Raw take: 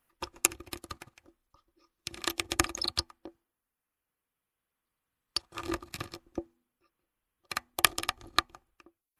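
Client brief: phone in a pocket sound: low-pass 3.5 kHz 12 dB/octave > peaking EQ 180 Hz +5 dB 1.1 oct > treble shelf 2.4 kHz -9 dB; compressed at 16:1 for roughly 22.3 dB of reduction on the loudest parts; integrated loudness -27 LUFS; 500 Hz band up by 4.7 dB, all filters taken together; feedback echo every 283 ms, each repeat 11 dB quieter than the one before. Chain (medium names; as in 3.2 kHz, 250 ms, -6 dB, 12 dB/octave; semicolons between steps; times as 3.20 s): peaking EQ 500 Hz +6.5 dB; compression 16:1, threshold -42 dBFS; low-pass 3.5 kHz 12 dB/octave; peaking EQ 180 Hz +5 dB 1.1 oct; treble shelf 2.4 kHz -9 dB; feedback delay 283 ms, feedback 28%, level -11 dB; trim +26 dB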